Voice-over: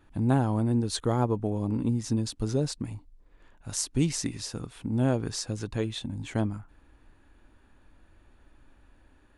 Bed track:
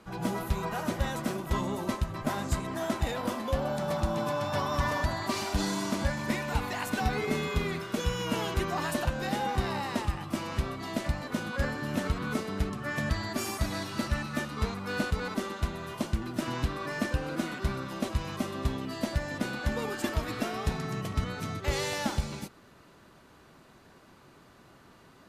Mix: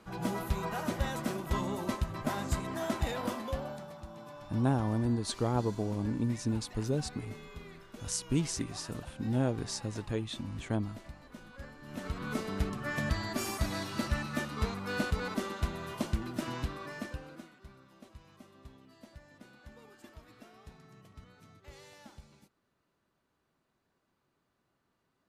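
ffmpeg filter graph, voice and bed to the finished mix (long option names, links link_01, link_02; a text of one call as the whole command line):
ffmpeg -i stem1.wav -i stem2.wav -filter_complex "[0:a]adelay=4350,volume=-4.5dB[link_01];[1:a]volume=13dB,afade=type=out:start_time=3.25:duration=0.67:silence=0.177828,afade=type=in:start_time=11.81:duration=0.67:silence=0.16788,afade=type=out:start_time=16.13:duration=1.39:silence=0.0944061[link_02];[link_01][link_02]amix=inputs=2:normalize=0" out.wav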